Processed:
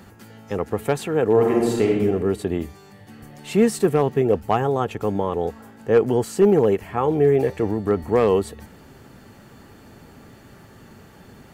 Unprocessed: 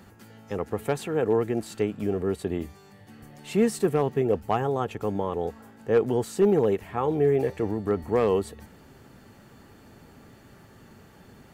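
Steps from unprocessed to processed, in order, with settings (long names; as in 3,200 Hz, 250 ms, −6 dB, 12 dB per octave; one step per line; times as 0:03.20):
0:01.31–0:01.90: thrown reverb, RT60 1.2 s, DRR −1.5 dB
0:05.93–0:07.21: notch filter 3,700 Hz, Q 11
level +5 dB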